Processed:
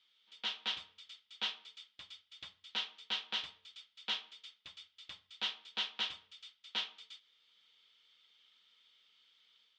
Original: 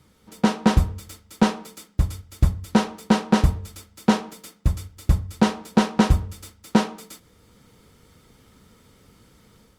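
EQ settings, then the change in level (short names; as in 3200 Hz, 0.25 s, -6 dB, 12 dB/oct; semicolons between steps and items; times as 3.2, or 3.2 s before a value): band-pass 3300 Hz, Q 4.8; air absorption 160 m; tilt +2.5 dB/oct; +1.0 dB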